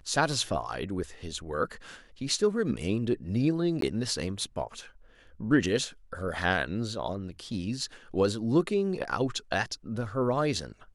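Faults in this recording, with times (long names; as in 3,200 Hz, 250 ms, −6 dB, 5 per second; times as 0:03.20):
0:03.81–0:03.82: drop-out 13 ms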